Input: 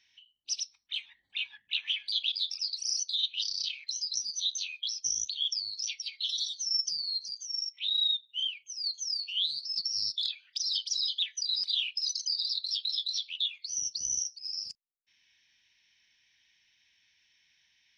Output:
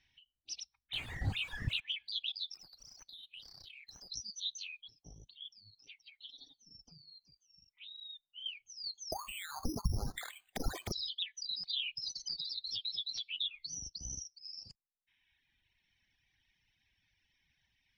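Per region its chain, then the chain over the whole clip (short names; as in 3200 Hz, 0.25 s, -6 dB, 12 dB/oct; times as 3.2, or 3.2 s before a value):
0.93–1.8 zero-crossing step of -35 dBFS + bell 110 Hz +8 dB 1 oct
2.54–4.1 median filter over 5 samples + compressor 12:1, threshold -40 dBFS
4.81–8.46 LPF 1800 Hz + low shelf 150 Hz -5 dB + comb 7.2 ms, depth 37%
9.12–10.92 careless resampling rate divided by 8×, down none, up zero stuff + compressor 16:1, threshold -26 dBFS
11.69–13.78 high shelf 8400 Hz -10 dB + comb 7.3 ms, depth 93% + three-band squash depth 70%
whole clip: RIAA curve playback; reverb removal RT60 1.8 s; bell 770 Hz +6 dB 0.26 oct; gain -1.5 dB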